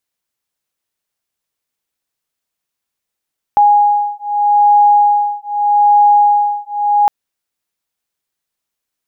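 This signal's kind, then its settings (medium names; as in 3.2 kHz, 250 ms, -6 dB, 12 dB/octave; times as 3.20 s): beating tones 825 Hz, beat 0.81 Hz, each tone -11 dBFS 3.51 s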